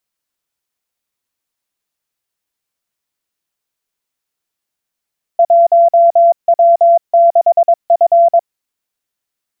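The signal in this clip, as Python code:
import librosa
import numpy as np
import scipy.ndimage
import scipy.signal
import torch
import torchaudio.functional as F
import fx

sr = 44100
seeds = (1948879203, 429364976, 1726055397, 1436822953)

y = fx.morse(sr, text='1W6F', wpm=22, hz=681.0, level_db=-4.5)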